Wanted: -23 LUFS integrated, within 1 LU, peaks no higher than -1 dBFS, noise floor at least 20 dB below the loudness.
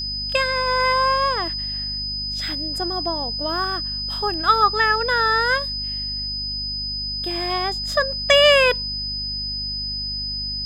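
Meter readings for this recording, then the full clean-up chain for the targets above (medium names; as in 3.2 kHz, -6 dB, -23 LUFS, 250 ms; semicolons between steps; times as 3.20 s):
hum 50 Hz; highest harmonic 250 Hz; hum level -33 dBFS; steady tone 5 kHz; tone level -25 dBFS; loudness -20.5 LUFS; peak level -2.5 dBFS; loudness target -23.0 LUFS
-> hum notches 50/100/150/200/250 Hz; band-stop 5 kHz, Q 30; trim -2.5 dB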